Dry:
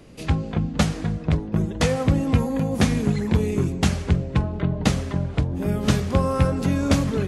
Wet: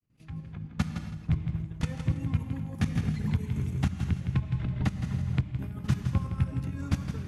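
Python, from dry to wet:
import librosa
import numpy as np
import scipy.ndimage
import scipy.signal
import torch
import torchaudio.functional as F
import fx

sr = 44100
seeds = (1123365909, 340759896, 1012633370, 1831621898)

y = fx.fade_in_head(x, sr, length_s=0.66)
y = fx.dereverb_blind(y, sr, rt60_s=0.75)
y = fx.graphic_eq_10(y, sr, hz=(125, 500, 4000, 8000), db=(8, -12, -4, -5))
y = fx.level_steps(y, sr, step_db=15)
y = fx.echo_feedback(y, sr, ms=163, feedback_pct=27, wet_db=-9)
y = fx.rev_gated(y, sr, seeds[0], gate_ms=310, shape='flat', drr_db=8.0)
y = fx.band_squash(y, sr, depth_pct=100, at=(2.95, 5.43))
y = y * librosa.db_to_amplitude(-7.5)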